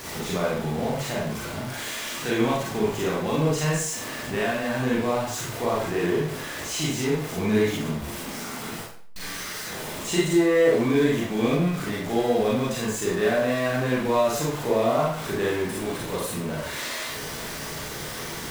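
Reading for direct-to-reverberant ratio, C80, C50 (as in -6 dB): -5.5 dB, 5.0 dB, 0.0 dB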